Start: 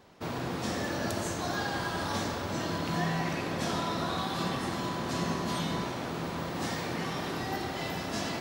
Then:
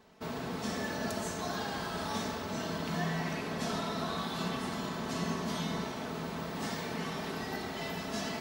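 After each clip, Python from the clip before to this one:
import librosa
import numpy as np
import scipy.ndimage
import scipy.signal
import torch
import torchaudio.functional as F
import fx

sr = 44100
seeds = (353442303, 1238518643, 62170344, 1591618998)

y = x + 0.52 * np.pad(x, (int(4.6 * sr / 1000.0), 0))[:len(x)]
y = y * librosa.db_to_amplitude(-4.0)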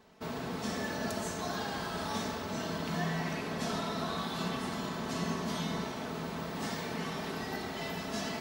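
y = x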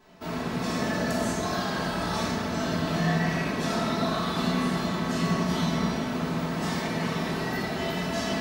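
y = fx.room_shoebox(x, sr, seeds[0], volume_m3=600.0, walls='mixed', distance_m=2.9)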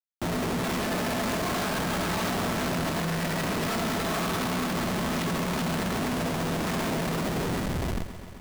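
y = fx.fade_out_tail(x, sr, length_s=2.02)
y = fx.schmitt(y, sr, flips_db=-35.5)
y = fx.echo_crushed(y, sr, ms=131, feedback_pct=80, bits=9, wet_db=-13.5)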